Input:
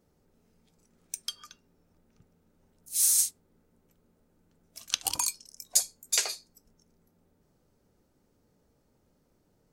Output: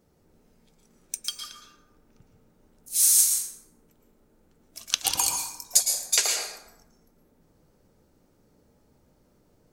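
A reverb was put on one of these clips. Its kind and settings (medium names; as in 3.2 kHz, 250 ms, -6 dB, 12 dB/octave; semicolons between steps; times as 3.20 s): plate-style reverb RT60 0.92 s, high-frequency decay 0.55×, pre-delay 100 ms, DRR 2 dB; trim +4 dB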